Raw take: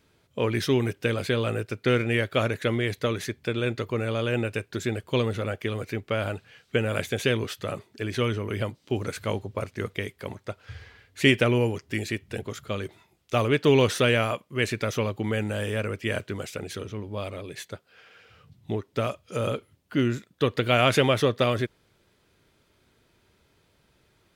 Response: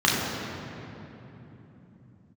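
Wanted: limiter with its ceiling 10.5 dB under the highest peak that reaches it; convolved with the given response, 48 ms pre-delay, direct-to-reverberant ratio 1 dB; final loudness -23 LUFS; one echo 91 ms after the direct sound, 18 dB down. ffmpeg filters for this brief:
-filter_complex "[0:a]alimiter=limit=-15dB:level=0:latency=1,aecho=1:1:91:0.126,asplit=2[a][b];[1:a]atrim=start_sample=2205,adelay=48[c];[b][c]afir=irnorm=-1:irlink=0,volume=-20dB[d];[a][d]amix=inputs=2:normalize=0,volume=2dB"

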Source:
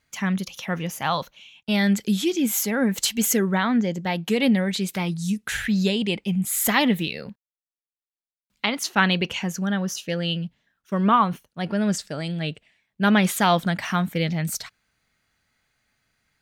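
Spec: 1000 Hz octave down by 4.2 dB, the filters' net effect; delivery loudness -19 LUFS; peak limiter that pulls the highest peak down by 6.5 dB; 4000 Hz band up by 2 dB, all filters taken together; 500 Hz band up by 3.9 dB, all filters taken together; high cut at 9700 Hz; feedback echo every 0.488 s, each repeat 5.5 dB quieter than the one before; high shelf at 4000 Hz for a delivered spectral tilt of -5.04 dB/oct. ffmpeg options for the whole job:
-af "lowpass=9.7k,equalizer=f=500:t=o:g=7,equalizer=f=1k:t=o:g=-8,highshelf=f=4k:g=-7.5,equalizer=f=4k:t=o:g=7.5,alimiter=limit=-13dB:level=0:latency=1,aecho=1:1:488|976|1464|1952|2440|2928|3416:0.531|0.281|0.149|0.079|0.0419|0.0222|0.0118,volume=4.5dB"

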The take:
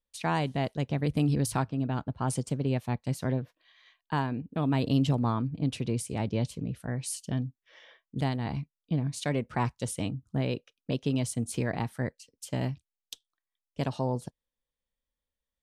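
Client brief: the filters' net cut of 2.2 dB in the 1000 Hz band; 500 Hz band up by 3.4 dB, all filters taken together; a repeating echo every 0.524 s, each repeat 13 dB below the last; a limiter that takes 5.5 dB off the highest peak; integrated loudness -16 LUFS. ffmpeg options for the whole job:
-af "equalizer=f=500:t=o:g=5.5,equalizer=f=1k:t=o:g=-5,alimiter=limit=-20dB:level=0:latency=1,aecho=1:1:524|1048|1572:0.224|0.0493|0.0108,volume=15.5dB"

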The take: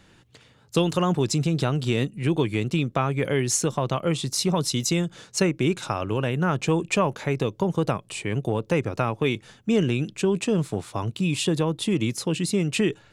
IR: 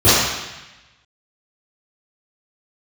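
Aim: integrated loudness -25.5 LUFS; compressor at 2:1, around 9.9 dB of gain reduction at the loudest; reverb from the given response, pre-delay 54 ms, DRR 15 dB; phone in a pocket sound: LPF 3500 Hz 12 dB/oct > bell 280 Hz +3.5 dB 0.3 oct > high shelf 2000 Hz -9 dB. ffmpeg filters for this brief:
-filter_complex "[0:a]acompressor=threshold=-36dB:ratio=2,asplit=2[a][b];[1:a]atrim=start_sample=2205,adelay=54[c];[b][c]afir=irnorm=-1:irlink=0,volume=-42.5dB[d];[a][d]amix=inputs=2:normalize=0,lowpass=3.5k,equalizer=f=280:t=o:w=0.3:g=3.5,highshelf=f=2k:g=-9,volume=8.5dB"

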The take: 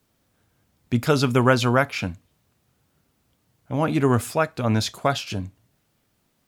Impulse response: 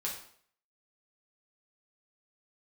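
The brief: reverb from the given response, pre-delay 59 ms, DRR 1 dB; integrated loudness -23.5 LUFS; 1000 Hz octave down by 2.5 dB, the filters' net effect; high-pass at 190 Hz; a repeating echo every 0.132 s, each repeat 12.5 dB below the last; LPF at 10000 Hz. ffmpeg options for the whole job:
-filter_complex "[0:a]highpass=190,lowpass=10k,equalizer=f=1k:t=o:g=-3.5,aecho=1:1:132|264|396:0.237|0.0569|0.0137,asplit=2[a][b];[1:a]atrim=start_sample=2205,adelay=59[c];[b][c]afir=irnorm=-1:irlink=0,volume=-3.5dB[d];[a][d]amix=inputs=2:normalize=0,volume=-1.5dB"

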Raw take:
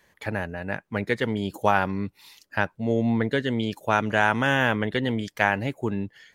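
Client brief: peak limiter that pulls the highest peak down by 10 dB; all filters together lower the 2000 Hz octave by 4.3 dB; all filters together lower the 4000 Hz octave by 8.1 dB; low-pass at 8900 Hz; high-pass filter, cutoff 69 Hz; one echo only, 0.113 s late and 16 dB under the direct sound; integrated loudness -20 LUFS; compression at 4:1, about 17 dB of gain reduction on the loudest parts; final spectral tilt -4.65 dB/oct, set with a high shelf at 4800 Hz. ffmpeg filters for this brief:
-af "highpass=69,lowpass=8.9k,equalizer=f=2k:t=o:g=-3.5,equalizer=f=4k:t=o:g=-6,highshelf=f=4.8k:g=-9,acompressor=threshold=-38dB:ratio=4,alimiter=level_in=5.5dB:limit=-24dB:level=0:latency=1,volume=-5.5dB,aecho=1:1:113:0.158,volume=22.5dB"

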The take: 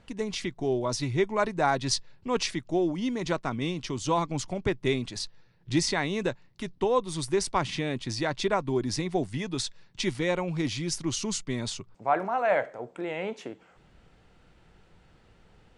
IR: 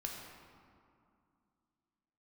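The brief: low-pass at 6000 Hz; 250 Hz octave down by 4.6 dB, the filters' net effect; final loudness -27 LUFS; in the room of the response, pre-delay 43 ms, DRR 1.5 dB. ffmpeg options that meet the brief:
-filter_complex "[0:a]lowpass=6k,equalizer=f=250:t=o:g=-7,asplit=2[a][b];[1:a]atrim=start_sample=2205,adelay=43[c];[b][c]afir=irnorm=-1:irlink=0,volume=-1dB[d];[a][d]amix=inputs=2:normalize=0,volume=1.5dB"

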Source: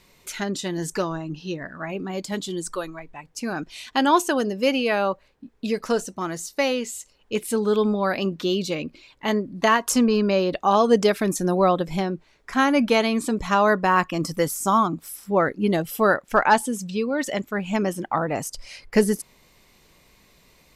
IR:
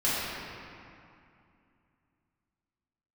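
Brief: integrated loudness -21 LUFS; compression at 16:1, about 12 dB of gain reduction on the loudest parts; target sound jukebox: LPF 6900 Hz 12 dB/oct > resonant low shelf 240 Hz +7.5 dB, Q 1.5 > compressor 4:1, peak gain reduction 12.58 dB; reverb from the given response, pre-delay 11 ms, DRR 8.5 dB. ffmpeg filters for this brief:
-filter_complex "[0:a]acompressor=threshold=-24dB:ratio=16,asplit=2[a][b];[1:a]atrim=start_sample=2205,adelay=11[c];[b][c]afir=irnorm=-1:irlink=0,volume=-21dB[d];[a][d]amix=inputs=2:normalize=0,lowpass=6.9k,lowshelf=f=240:t=q:w=1.5:g=7.5,acompressor=threshold=-31dB:ratio=4,volume=13dB"

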